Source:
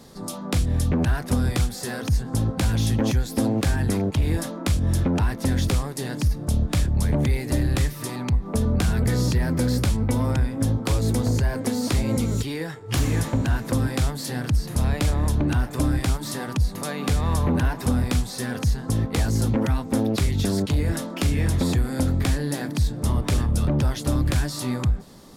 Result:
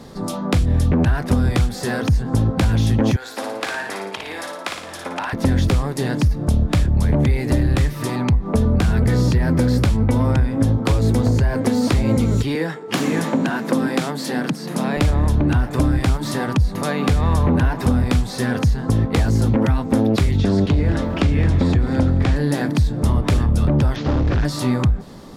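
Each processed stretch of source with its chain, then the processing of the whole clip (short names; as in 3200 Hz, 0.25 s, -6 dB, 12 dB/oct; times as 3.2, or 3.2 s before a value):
3.16–5.33 HPF 840 Hz + high shelf 5900 Hz -6.5 dB + flutter echo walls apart 9.7 m, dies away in 0.66 s
12.55–14.97 steep high-pass 160 Hz 48 dB/oct + upward compressor, threshold -38 dBFS
20.37–22.36 air absorption 82 m + lo-fi delay 0.217 s, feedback 35%, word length 8-bit, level -12.5 dB
23.96–24.45 delta modulation 32 kbps, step -38 dBFS + hard clip -23.5 dBFS
whole clip: compressor, threshold -21 dBFS; high shelf 4900 Hz -11 dB; gain +8.5 dB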